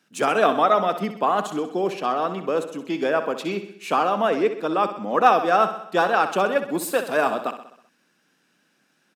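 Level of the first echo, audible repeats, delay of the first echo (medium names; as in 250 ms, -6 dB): -11.0 dB, 5, 64 ms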